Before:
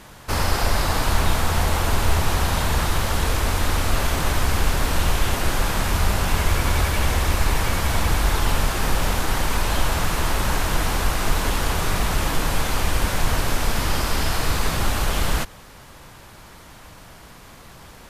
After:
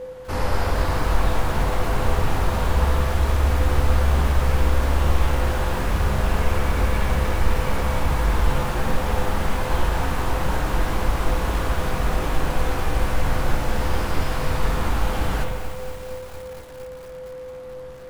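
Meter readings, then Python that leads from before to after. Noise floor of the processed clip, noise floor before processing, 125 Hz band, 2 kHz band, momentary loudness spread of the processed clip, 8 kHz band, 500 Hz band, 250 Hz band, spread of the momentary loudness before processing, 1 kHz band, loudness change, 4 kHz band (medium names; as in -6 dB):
-36 dBFS, -44 dBFS, +1.0 dB, -3.5 dB, 13 LU, -10.0 dB, +2.0 dB, 0.0 dB, 2 LU, -1.0 dB, -1.0 dB, -7.5 dB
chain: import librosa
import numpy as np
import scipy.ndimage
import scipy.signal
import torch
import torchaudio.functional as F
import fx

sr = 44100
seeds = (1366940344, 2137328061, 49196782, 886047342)

y = x + 10.0 ** (-29.0 / 20.0) * np.sin(2.0 * np.pi * 510.0 * np.arange(len(x)) / sr)
y = fx.chorus_voices(y, sr, voices=6, hz=0.22, base_ms=18, depth_ms=4.3, mix_pct=30)
y = fx.high_shelf(y, sr, hz=2300.0, db=-9.5)
y = fx.rev_spring(y, sr, rt60_s=1.4, pass_ms=(44, 58), chirp_ms=60, drr_db=2.5)
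y = fx.echo_crushed(y, sr, ms=230, feedback_pct=80, bits=6, wet_db=-11.5)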